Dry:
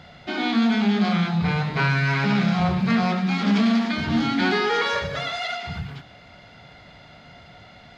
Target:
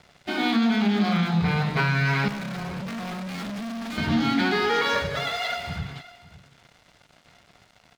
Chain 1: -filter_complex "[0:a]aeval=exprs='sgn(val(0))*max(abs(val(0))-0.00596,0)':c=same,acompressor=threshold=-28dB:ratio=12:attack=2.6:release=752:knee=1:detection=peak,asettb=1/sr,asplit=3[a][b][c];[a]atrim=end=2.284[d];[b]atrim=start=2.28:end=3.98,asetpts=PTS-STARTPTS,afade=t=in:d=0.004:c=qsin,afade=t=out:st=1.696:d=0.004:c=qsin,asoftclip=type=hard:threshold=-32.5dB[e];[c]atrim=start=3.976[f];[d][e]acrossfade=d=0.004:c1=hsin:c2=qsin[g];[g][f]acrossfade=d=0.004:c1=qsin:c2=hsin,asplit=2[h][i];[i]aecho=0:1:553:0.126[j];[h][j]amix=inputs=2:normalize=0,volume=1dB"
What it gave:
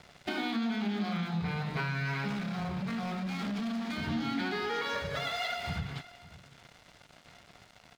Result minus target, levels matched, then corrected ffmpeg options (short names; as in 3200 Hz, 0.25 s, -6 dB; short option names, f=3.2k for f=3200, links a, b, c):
compressor: peak gain reduction +10.5 dB
-filter_complex "[0:a]aeval=exprs='sgn(val(0))*max(abs(val(0))-0.00596,0)':c=same,acompressor=threshold=-16.5dB:ratio=12:attack=2.6:release=752:knee=1:detection=peak,asettb=1/sr,asplit=3[a][b][c];[a]atrim=end=2.284[d];[b]atrim=start=2.28:end=3.98,asetpts=PTS-STARTPTS,afade=t=in:d=0.004:c=qsin,afade=t=out:st=1.696:d=0.004:c=qsin,asoftclip=type=hard:threshold=-32.5dB[e];[c]atrim=start=3.976[f];[d][e]acrossfade=d=0.004:c1=hsin:c2=qsin[g];[g][f]acrossfade=d=0.004:c1=qsin:c2=hsin,asplit=2[h][i];[i]aecho=0:1:553:0.126[j];[h][j]amix=inputs=2:normalize=0,volume=1dB"